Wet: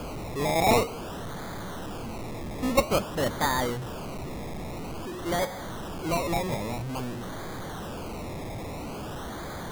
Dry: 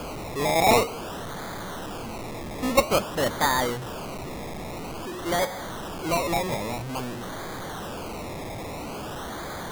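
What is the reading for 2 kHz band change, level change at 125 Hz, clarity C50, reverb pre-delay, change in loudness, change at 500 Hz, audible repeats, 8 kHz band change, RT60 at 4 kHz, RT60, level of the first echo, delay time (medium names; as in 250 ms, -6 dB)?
-4.0 dB, +1.0 dB, no reverb, no reverb, -2.5 dB, -2.5 dB, no echo, -4.0 dB, no reverb, no reverb, no echo, no echo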